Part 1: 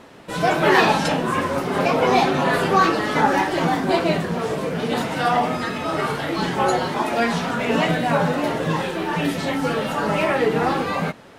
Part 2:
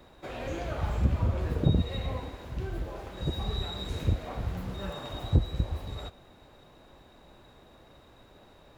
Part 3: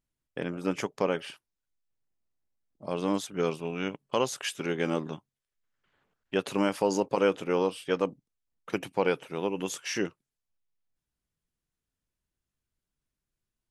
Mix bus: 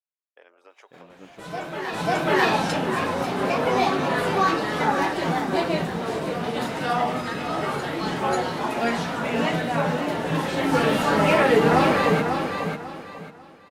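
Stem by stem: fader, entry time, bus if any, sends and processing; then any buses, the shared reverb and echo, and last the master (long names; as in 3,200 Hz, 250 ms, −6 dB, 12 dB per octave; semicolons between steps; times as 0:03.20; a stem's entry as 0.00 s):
+1.5 dB, 1.10 s, no bus, no send, echo send −6 dB, automatic ducking −17 dB, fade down 1.80 s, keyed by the third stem
−7.0 dB, 0.70 s, bus A, no send, echo send −3.5 dB, Butterworth high-pass 590 Hz 48 dB per octave
−11.0 dB, 0.00 s, bus A, no send, echo send −6.5 dB, low-pass filter 2,600 Hz 6 dB per octave
bus A: 0.0 dB, high-pass filter 530 Hz 24 dB per octave; downward compressor 6 to 1, threshold −47 dBFS, peak gain reduction 12.5 dB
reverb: not used
echo: repeating echo 544 ms, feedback 28%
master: no processing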